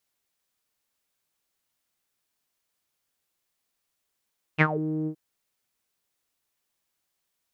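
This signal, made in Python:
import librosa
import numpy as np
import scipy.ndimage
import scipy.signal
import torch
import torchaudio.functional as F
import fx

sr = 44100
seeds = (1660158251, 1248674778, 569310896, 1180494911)

y = fx.sub_voice(sr, note=51, wave='saw', cutoff_hz=360.0, q=10.0, env_oct=3.0, env_s=0.2, attack_ms=32.0, decay_s=0.06, sustain_db=-14.5, release_s=0.08, note_s=0.49, slope=12)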